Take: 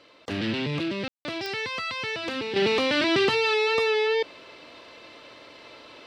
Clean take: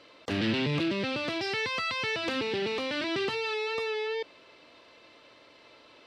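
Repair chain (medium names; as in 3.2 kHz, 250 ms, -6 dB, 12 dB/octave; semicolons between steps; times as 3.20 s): de-click; room tone fill 1.08–1.25 s; trim 0 dB, from 2.56 s -8.5 dB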